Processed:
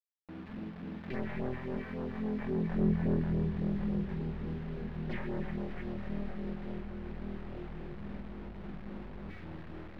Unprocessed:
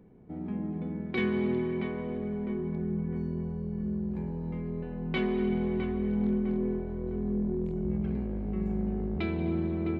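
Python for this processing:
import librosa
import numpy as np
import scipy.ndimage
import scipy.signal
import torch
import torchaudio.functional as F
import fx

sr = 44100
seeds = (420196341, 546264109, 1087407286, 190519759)

p1 = np.minimum(x, 2.0 * 10.0 ** (-30.5 / 20.0) - x)
p2 = fx.doppler_pass(p1, sr, speed_mps=12, closest_m=5.6, pass_at_s=3.13)
p3 = fx.peak_eq(p2, sr, hz=1800.0, db=10.5, octaves=0.43)
p4 = fx.rider(p3, sr, range_db=3, speed_s=2.0)
p5 = p3 + F.gain(torch.from_numpy(p4), 2.5).numpy()
p6 = fx.phaser_stages(p5, sr, stages=2, low_hz=300.0, high_hz=3300.0, hz=3.6, feedback_pct=5)
p7 = fx.quant_dither(p6, sr, seeds[0], bits=8, dither='none')
p8 = fx.air_absorb(p7, sr, metres=370.0)
p9 = p8 + fx.echo_swing(p8, sr, ms=995, ratio=1.5, feedback_pct=69, wet_db=-15.5, dry=0)
y = fx.pre_swell(p9, sr, db_per_s=110.0)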